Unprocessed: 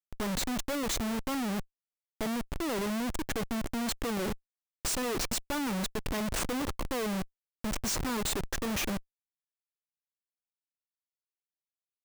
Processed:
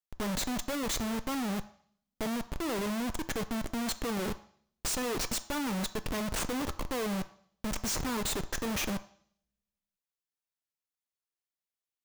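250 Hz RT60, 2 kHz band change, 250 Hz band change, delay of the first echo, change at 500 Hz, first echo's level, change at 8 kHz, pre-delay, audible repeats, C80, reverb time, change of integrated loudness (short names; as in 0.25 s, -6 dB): 0.65 s, -0.5 dB, -0.5 dB, none, -1.0 dB, none, -0.5 dB, 3 ms, none, 18.5 dB, 0.55 s, -0.5 dB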